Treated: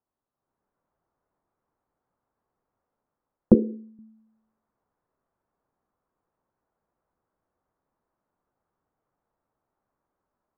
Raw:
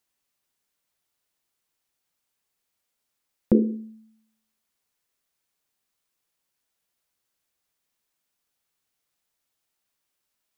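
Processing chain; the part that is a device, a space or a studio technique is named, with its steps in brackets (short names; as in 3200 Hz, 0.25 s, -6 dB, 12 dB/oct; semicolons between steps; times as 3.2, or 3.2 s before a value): 3.54–3.99 HPF 710 Hz 6 dB/oct; action camera in a waterproof case (LPF 1200 Hz 24 dB/oct; AGC gain up to 9.5 dB; AAC 96 kbps 22050 Hz)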